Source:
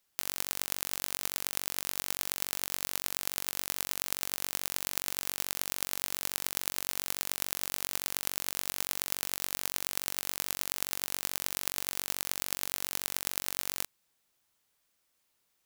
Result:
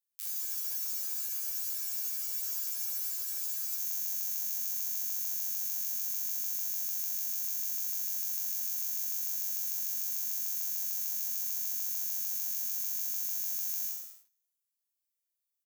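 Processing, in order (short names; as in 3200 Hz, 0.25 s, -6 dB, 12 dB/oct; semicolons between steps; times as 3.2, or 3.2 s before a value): pre-emphasis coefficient 0.9; overloaded stage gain 7.5 dB; resonator 110 Hz, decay 0.93 s, harmonics all, mix 90%; early reflections 29 ms -18 dB, 62 ms -8 dB; sample leveller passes 3; notch 700 Hz, Q 12; spectral freeze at 0.32, 3.45 s; gain +6 dB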